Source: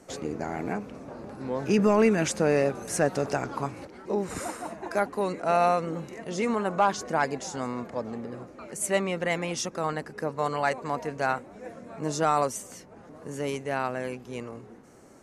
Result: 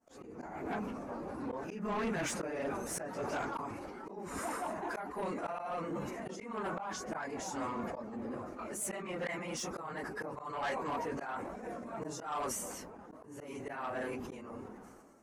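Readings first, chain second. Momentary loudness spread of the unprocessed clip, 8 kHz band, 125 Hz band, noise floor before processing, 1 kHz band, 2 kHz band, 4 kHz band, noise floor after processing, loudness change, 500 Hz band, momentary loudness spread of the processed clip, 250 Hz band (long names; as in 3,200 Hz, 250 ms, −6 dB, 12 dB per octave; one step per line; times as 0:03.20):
16 LU, −7.0 dB, −12.5 dB, −50 dBFS, −10.0 dB, −9.0 dB, −9.5 dB, −52 dBFS, −11.0 dB, −12.5 dB, 9 LU, −10.5 dB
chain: random phases in long frames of 50 ms
downward expander −41 dBFS
dynamic equaliser 2,000 Hz, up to +4 dB, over −41 dBFS, Q 1.5
downward compressor 1.5 to 1, threshold −42 dBFS, peak gain reduction 10 dB
octave-band graphic EQ 125/500/1,000/2,000/4,000/8,000 Hz −9/−4/+3/−3/−7/−4 dB
volume swells 311 ms
soft clipping −34.5 dBFS, distortion −11 dB
level that may fall only so fast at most 31 dB per second
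level +3.5 dB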